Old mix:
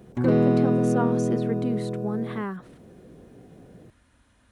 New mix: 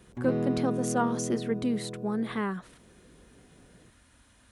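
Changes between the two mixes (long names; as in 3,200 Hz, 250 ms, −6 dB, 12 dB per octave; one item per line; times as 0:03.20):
speech: add high-shelf EQ 2,900 Hz +8 dB
background −9.5 dB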